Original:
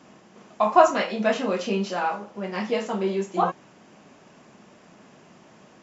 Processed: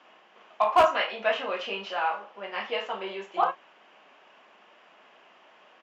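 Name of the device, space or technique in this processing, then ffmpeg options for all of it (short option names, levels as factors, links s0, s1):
megaphone: -filter_complex "[0:a]highpass=690,lowpass=2700,equalizer=f=3000:t=o:w=0.48:g=7.5,asoftclip=type=hard:threshold=0.237,asplit=2[s0][s1];[s1]adelay=35,volume=0.211[s2];[s0][s2]amix=inputs=2:normalize=0"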